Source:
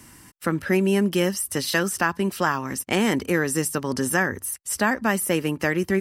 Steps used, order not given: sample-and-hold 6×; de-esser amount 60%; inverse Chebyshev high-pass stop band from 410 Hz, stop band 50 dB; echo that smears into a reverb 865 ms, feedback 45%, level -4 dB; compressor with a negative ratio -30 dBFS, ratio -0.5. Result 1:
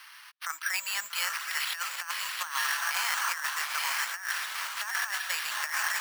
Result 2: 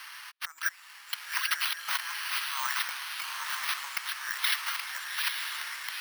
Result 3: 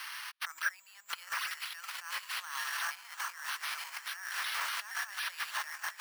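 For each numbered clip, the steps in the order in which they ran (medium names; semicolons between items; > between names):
echo that smears into a reverb > de-esser > sample-and-hold > inverse Chebyshev high-pass > compressor with a negative ratio; compressor with a negative ratio > echo that smears into a reverb > sample-and-hold > de-esser > inverse Chebyshev high-pass; echo that smears into a reverb > sample-and-hold > compressor with a negative ratio > inverse Chebyshev high-pass > de-esser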